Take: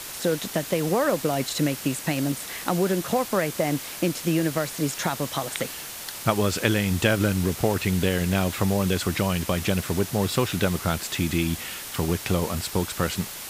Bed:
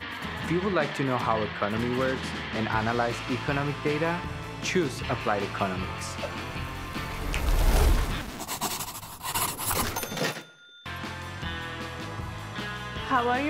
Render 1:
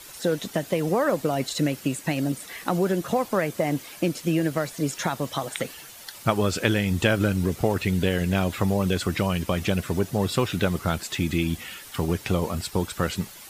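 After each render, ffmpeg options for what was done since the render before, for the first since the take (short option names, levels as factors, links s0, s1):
-af "afftdn=nr=10:nf=-37"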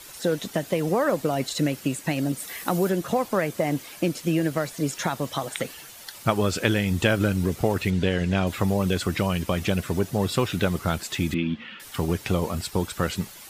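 -filter_complex "[0:a]asettb=1/sr,asplit=3[s0][s1][s2];[s0]atrim=end=2.384[s3];[s1]atrim=start=2.38:end=2.9,asetpts=PTS-STARTPTS,afade=t=in:d=0.004:c=qsin,afade=t=out:st=0.516:d=0.004:c=qsin,highshelf=f=8500:g=9.5[s4];[s2]atrim=start=2.896[s5];[s3][s4]acrossfade=d=0.004:c1=hsin:c2=qsin[s6];[s6][s5]acrossfade=d=0.004:c1=qsin:c2=hsin,asettb=1/sr,asplit=3[s7][s8][s9];[s7]atrim=end=7.904[s10];[s8]atrim=start=7.9:end=8.47,asetpts=PTS-STARTPTS,afade=t=in:d=0.004:c=qsin,afade=t=out:st=0.566:d=0.004:c=qsin,lowpass=6300[s11];[s9]atrim=start=8.466[s12];[s10][s11]acrossfade=d=0.004:c1=hsin:c2=qsin[s13];[s13][s12]acrossfade=d=0.004:c1=qsin:c2=hsin,asettb=1/sr,asplit=3[s14][s15][s16];[s14]atrim=end=11.344[s17];[s15]atrim=start=11.34:end=11.8,asetpts=PTS-STARTPTS,afade=t=in:d=0.004:c=qsin,afade=t=out:st=0.456:d=0.004:c=qsin,highpass=170,equalizer=f=220:t=q:w=4:g=9,equalizer=f=380:t=q:w=4:g=-6,equalizer=f=720:t=q:w=4:g=-10,equalizer=f=2200:t=q:w=4:g=-3,lowpass=f=3300:w=0.5412,lowpass=f=3300:w=1.3066[s18];[s16]atrim=start=11.796[s19];[s17][s18]acrossfade=d=0.004:c1=hsin:c2=qsin[s20];[s20][s19]acrossfade=d=0.004:c1=qsin:c2=hsin"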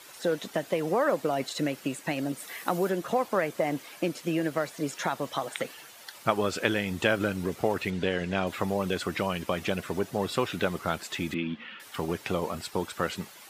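-af "highpass=f=420:p=1,highshelf=f=3500:g=-8"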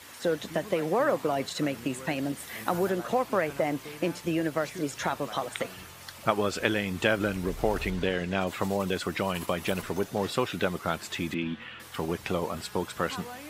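-filter_complex "[1:a]volume=0.15[s0];[0:a][s0]amix=inputs=2:normalize=0"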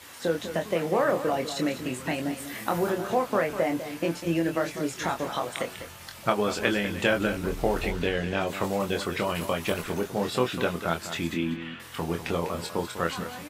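-filter_complex "[0:a]asplit=2[s0][s1];[s1]adelay=24,volume=0.562[s2];[s0][s2]amix=inputs=2:normalize=0,aecho=1:1:199:0.282"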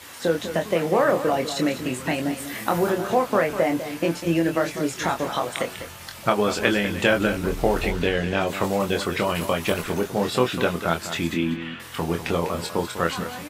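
-af "volume=1.68,alimiter=limit=0.708:level=0:latency=1"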